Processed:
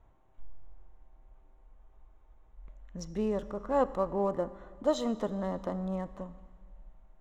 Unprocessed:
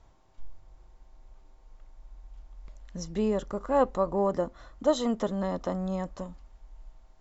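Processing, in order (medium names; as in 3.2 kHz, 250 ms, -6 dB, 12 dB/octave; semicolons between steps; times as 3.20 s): local Wiener filter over 9 samples; Schroeder reverb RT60 2.1 s, combs from 28 ms, DRR 15 dB; spectral freeze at 1.77 s, 0.80 s; trim -3.5 dB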